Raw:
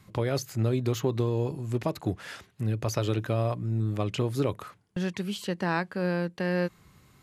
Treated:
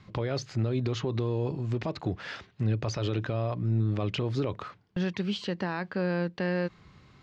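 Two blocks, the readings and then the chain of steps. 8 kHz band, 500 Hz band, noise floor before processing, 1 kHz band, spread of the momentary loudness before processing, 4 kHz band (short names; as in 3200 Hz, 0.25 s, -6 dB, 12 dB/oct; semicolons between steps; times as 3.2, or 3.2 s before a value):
-6.5 dB, -2.0 dB, -61 dBFS, -3.0 dB, 6 LU, +0.5 dB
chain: LPF 5200 Hz 24 dB/oct; limiter -22.5 dBFS, peak gain reduction 10 dB; gain +2.5 dB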